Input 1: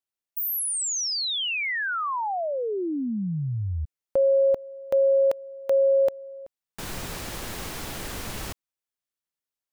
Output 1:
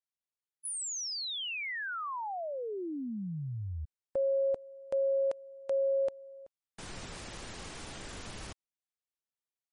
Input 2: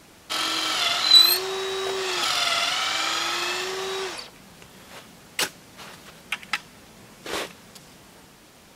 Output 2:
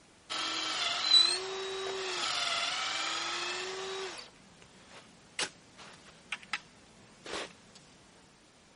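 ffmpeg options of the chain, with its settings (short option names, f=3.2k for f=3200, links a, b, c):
-af "volume=-9dB" -ar 44100 -c:a libmp3lame -b:a 40k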